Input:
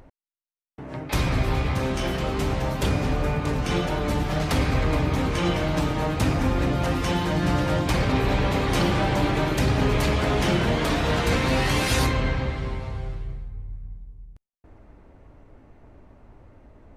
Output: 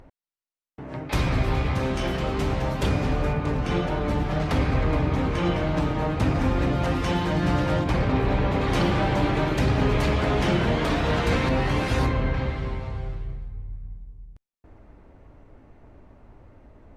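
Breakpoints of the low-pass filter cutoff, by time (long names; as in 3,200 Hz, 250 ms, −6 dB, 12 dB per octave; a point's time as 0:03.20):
low-pass filter 6 dB per octave
5,000 Hz
from 0:03.33 2,300 Hz
from 0:06.35 4,300 Hz
from 0:07.84 1,800 Hz
from 0:08.61 3,700 Hz
from 0:11.49 1,500 Hz
from 0:12.34 4,100 Hz
from 0:13.42 7,900 Hz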